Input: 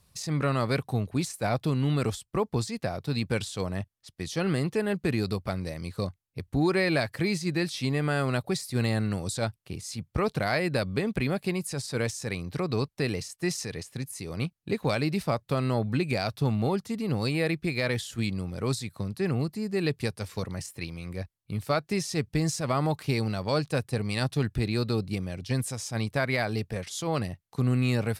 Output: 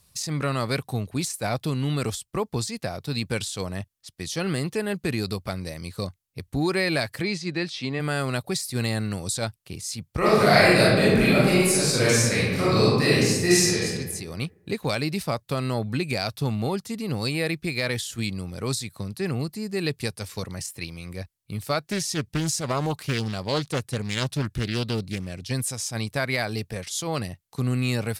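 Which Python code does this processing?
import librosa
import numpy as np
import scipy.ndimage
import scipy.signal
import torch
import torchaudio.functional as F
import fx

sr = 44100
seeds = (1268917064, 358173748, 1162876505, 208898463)

y = fx.bandpass_edges(x, sr, low_hz=150.0, high_hz=fx.line((7.21, 5300.0), (7.99, 3600.0)), at=(7.21, 7.99), fade=0.02)
y = fx.reverb_throw(y, sr, start_s=10.18, length_s=3.67, rt60_s=1.3, drr_db=-9.5)
y = fx.doppler_dist(y, sr, depth_ms=0.49, at=(21.87, 25.49))
y = fx.high_shelf(y, sr, hz=3100.0, db=8.0)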